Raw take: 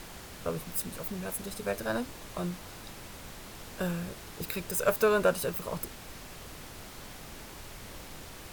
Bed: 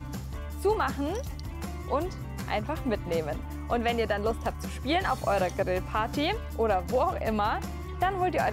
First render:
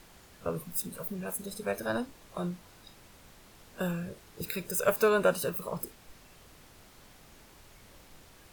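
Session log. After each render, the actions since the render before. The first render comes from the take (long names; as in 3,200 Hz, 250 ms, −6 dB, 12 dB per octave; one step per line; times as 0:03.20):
noise reduction from a noise print 10 dB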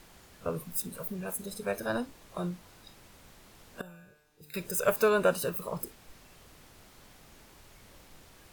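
0:03.81–0:04.54: tuned comb filter 150 Hz, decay 1.2 s, mix 90%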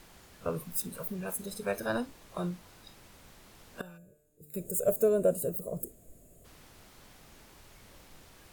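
0:03.98–0:06.45: gain on a spectral selection 720–6,500 Hz −19 dB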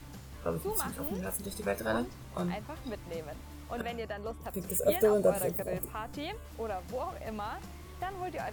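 mix in bed −11 dB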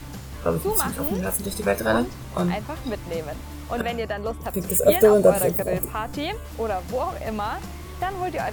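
level +10.5 dB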